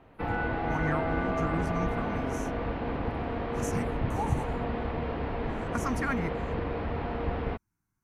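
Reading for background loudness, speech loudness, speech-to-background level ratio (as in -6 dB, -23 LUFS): -32.5 LUFS, -36.0 LUFS, -3.5 dB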